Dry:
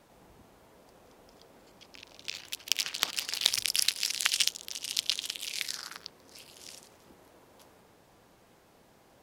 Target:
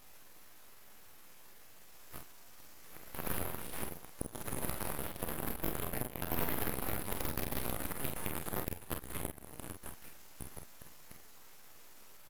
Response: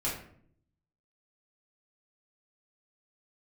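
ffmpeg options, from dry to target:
-af "areverse,lowpass=f=6.5k:w=0.5412,lowpass=f=6.5k:w=1.3066,afftfilt=real='re*lt(hypot(re,im),0.0501)':imag='im*lt(hypot(re,im),0.0501)':win_size=1024:overlap=0.75,highpass=f=1.2k:p=1,equalizer=f=1.7k:w=6:g=6.5,acompressor=threshold=-49dB:ratio=8,aexciter=amount=13.4:drive=5.7:freq=4.9k,aeval=exprs='0.126*(abs(mod(val(0)/0.126+3,4)-2)-1)':c=same,atempo=0.75,aeval=exprs='abs(val(0))':c=same,aecho=1:1:34|47:0.299|0.447"

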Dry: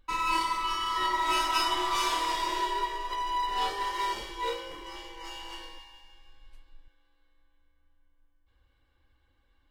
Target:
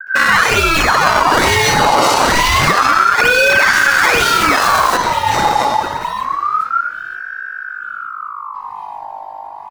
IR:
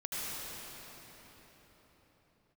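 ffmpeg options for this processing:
-filter_complex "[0:a]asettb=1/sr,asplit=3[a][b][c];[a]atrim=end=3.664[d];[b]atrim=start=3.66:end=4.9,asetpts=PTS-STARTPTS,afade=t=in:d=0.004:c=qsin,afade=t=out:st=1.236:d=0.004:c=qsin,aeval=exprs='val(0)+0.5*0.0158*sgn(val(0))':c=same[e];[c]atrim=start=4.896[f];[d][e]acrossfade=d=0.004:c1=hsin:c2=qsin[g];[g][f]acrossfade=d=0.004:c1=qsin:c2=hsin,aeval=exprs='val(0)+0.00141*(sin(2*PI*50*n/s)+sin(2*PI*2*50*n/s)/2+sin(2*PI*3*50*n/s)/3+sin(2*PI*4*50*n/s)/4+sin(2*PI*5*50*n/s)/5)':c=same,dynaudnorm=f=630:g=5:m=4.5dB,acrossover=split=150|470[h][i][j];[j]adelay=70[k];[i]adelay=340[l];[h][l][k]amix=inputs=3:normalize=0,acrossover=split=230|1200|3300[m][n][o][p];[n]acompressor=threshold=-56dB:ratio=6[q];[o]acrusher=samples=29:mix=1:aa=0.000001:lfo=1:lforange=46.4:lforate=1.1[r];[m][q][r][p]amix=inputs=4:normalize=0,highshelf=f=3k:g=-9,alimiter=level_in=29.5dB:limit=-1dB:release=50:level=0:latency=1,aeval=exprs='val(0)*sin(2*PI*1200*n/s+1200*0.3/0.27*sin(2*PI*0.27*n/s))':c=same"

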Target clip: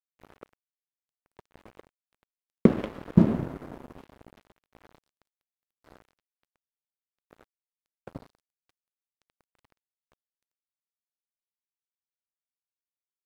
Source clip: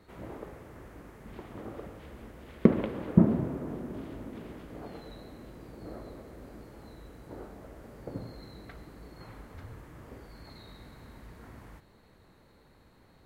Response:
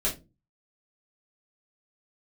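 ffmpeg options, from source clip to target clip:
-af "aeval=exprs='sgn(val(0))*max(abs(val(0))-0.0133,0)':c=same,volume=2.5dB"

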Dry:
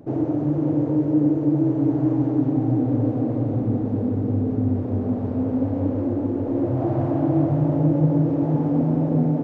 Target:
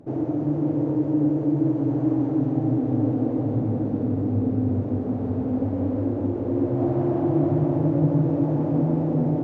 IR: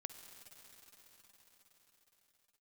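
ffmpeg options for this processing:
-filter_complex "[1:a]atrim=start_sample=2205,asetrate=22932,aresample=44100[a];[0:a][a]afir=irnorm=-1:irlink=0,volume=-1.5dB"

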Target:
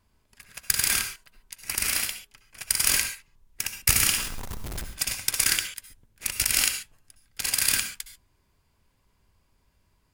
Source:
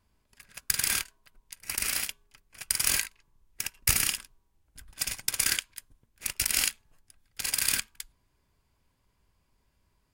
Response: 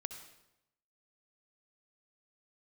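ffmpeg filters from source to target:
-filter_complex "[0:a]asettb=1/sr,asplit=3[a][b][c];[a]atrim=end=4.014[d];[b]atrim=start=4.01:end=4.85,asetpts=PTS-STARTPTS,afade=t=in:d=0.004:c=qsin,afade=t=out:st=0.836:d=0.004:c=qsin,aeval=exprs='val(0)+0.5*0.0266*sgn(val(0))':c=same[e];[c]atrim=start=4.846[f];[d][e]acrossfade=d=0.004:c1=hsin:c2=qsin[g];[g][f]acrossfade=d=0.004:c1=qsin:c2=hsin[h];[1:a]atrim=start_sample=2205,atrim=end_sample=6615[i];[h][i]afir=irnorm=-1:irlink=0,volume=6dB"

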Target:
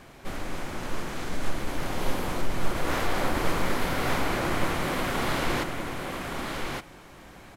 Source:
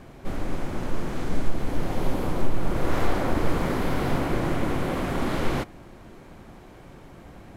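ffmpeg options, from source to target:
-af "aeval=exprs='0.398*(cos(1*acos(clip(val(0)/0.398,-1,1)))-cos(1*PI/2))+0.0316*(cos(2*acos(clip(val(0)/0.398,-1,1)))-cos(2*PI/2))':c=same,tiltshelf=f=810:g=-5.5,aecho=1:1:1168:0.631,volume=-1dB"

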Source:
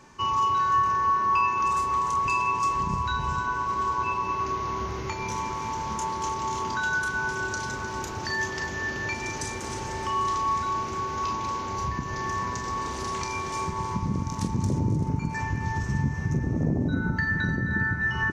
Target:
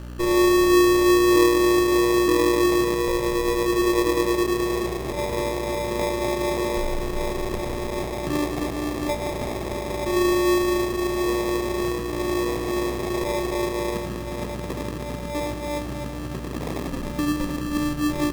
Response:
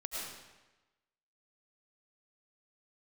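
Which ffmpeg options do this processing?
-filter_complex "[0:a]acrossover=split=370|760[a][b][c];[a]acompressor=threshold=-35dB:ratio=6[d];[d][b][c]amix=inputs=3:normalize=0,highpass=140[e];[1:a]atrim=start_sample=2205,atrim=end_sample=4410[f];[e][f]afir=irnorm=-1:irlink=0,aeval=exprs='val(0)+0.00891*(sin(2*PI*60*n/s)+sin(2*PI*2*60*n/s)/2+sin(2*PI*3*60*n/s)/3+sin(2*PI*4*60*n/s)/4+sin(2*PI*5*60*n/s)/5)':c=same,acrusher=samples=30:mix=1:aa=0.000001,equalizer=f=510:w=0.91:g=3.5,volume=6.5dB"

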